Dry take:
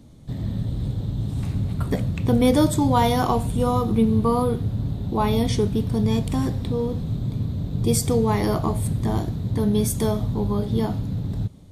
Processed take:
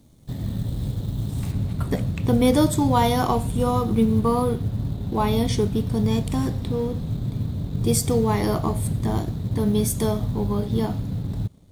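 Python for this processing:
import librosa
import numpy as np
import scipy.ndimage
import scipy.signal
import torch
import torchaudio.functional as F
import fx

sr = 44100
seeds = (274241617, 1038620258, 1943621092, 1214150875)

y = fx.law_mismatch(x, sr, coded='A')
y = fx.high_shelf(y, sr, hz=6300.0, db=fx.steps((0.0, 9.5), (1.51, 2.0)))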